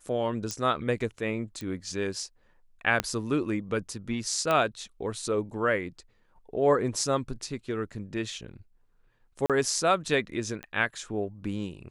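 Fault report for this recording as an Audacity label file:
0.510000	0.510000	pop -17 dBFS
1.610000	1.610000	pop -23 dBFS
3.000000	3.000000	pop -10 dBFS
4.510000	4.510000	pop -13 dBFS
9.460000	9.500000	dropout 37 ms
10.630000	10.630000	pop -22 dBFS

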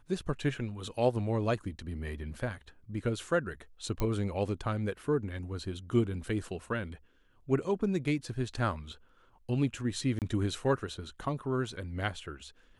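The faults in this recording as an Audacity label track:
4.000000	4.000000	pop -19 dBFS
10.190000	10.220000	dropout 28 ms

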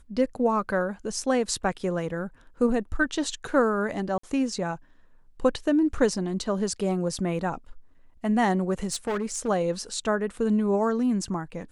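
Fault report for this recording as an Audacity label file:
4.180000	4.230000	dropout 54 ms
8.920000	9.490000	clipped -24 dBFS

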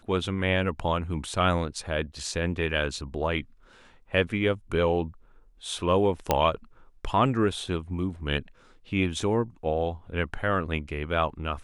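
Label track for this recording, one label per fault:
6.310000	6.310000	pop -7 dBFS

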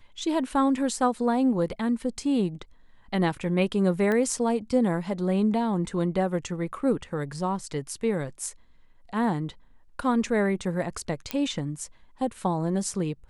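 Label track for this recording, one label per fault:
4.120000	4.120000	pop -16 dBFS
11.310000	11.310000	pop -12 dBFS

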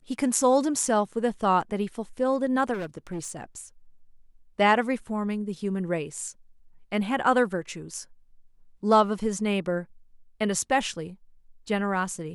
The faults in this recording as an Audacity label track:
2.730000	3.440000	clipped -28.5 dBFS

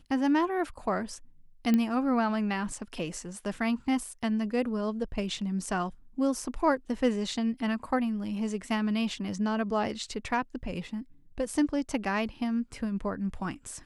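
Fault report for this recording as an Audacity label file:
1.740000	1.740000	pop -14 dBFS

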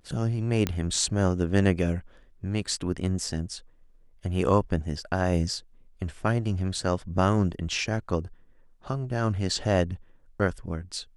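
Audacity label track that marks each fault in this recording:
0.670000	0.670000	pop -11 dBFS

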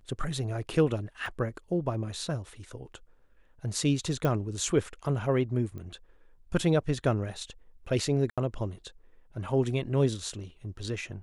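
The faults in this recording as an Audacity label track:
1.260000	1.260000	dropout 2.7 ms
4.250000	4.250000	pop -17 dBFS
5.780000	5.780000	pop -30 dBFS
8.300000	8.380000	dropout 76 ms

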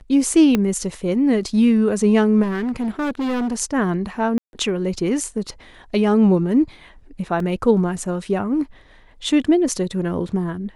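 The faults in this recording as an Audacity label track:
0.550000	0.550000	pop -6 dBFS
2.420000	3.540000	clipped -19.5 dBFS
4.380000	4.530000	dropout 151 ms
7.400000	7.400000	dropout 2.5 ms

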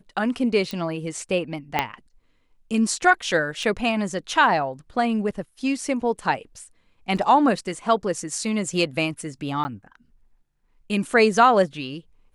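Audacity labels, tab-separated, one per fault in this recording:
0.710000	0.710000	pop -16 dBFS
1.790000	1.790000	pop -7 dBFS
3.630000	3.630000	dropout 2.7 ms
7.170000	7.170000	dropout 4.1 ms
9.640000	9.650000	dropout 10 ms

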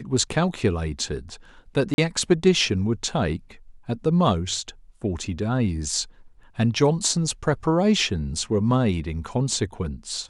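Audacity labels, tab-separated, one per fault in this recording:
1.940000	1.980000	dropout 41 ms

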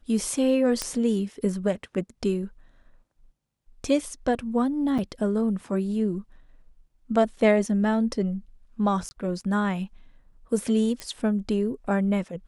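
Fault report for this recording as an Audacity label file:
0.820000	0.820000	pop -11 dBFS
4.980000	4.990000	dropout 6.6 ms
9.090000	9.110000	dropout 20 ms
11.000000	11.000000	pop -18 dBFS

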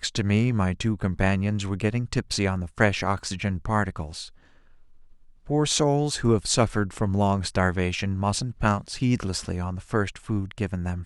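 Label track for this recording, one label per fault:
3.190000	3.190000	dropout 2.2 ms

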